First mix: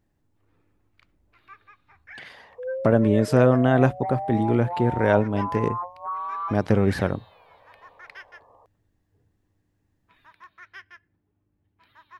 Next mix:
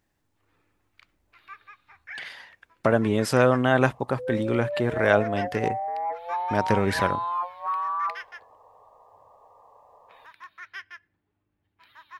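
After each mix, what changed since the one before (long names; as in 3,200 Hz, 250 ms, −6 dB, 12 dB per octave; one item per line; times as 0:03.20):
second sound: entry +1.60 s
master: add tilt shelving filter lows −6 dB, about 640 Hz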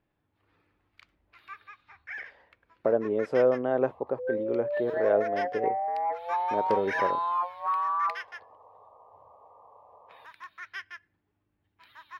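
speech: add resonant band-pass 470 Hz, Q 2.1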